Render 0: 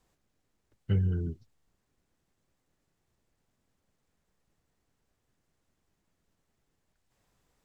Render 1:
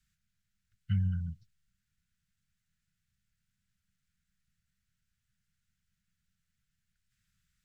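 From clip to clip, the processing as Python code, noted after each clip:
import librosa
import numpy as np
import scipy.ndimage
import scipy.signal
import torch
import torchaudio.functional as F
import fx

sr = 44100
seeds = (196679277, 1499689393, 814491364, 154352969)

y = scipy.signal.sosfilt(scipy.signal.cheby1(4, 1.0, [200.0, 1400.0], 'bandstop', fs=sr, output='sos'), x)
y = y * 10.0 ** (-2.5 / 20.0)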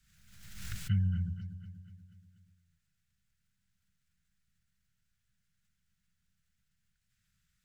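y = fx.echo_feedback(x, sr, ms=241, feedback_pct=53, wet_db=-11.5)
y = fx.pre_swell(y, sr, db_per_s=50.0)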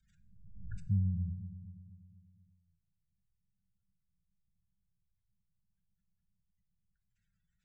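y = fx.spec_gate(x, sr, threshold_db=-20, keep='strong')
y = fx.rev_double_slope(y, sr, seeds[0], early_s=0.67, late_s=2.0, knee_db=-18, drr_db=11.5)
y = y * 10.0 ** (-2.0 / 20.0)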